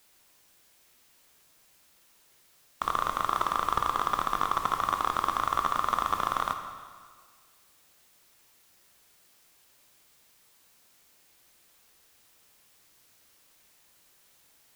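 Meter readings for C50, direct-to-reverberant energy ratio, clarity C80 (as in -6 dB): 7.0 dB, 5.5 dB, 8.5 dB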